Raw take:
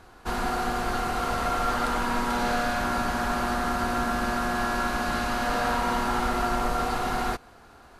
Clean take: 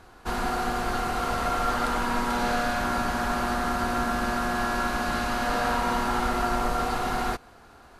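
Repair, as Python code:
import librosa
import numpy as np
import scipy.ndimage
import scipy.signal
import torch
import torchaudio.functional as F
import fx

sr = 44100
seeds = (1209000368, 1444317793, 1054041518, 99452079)

y = fx.fix_declip(x, sr, threshold_db=-18.0)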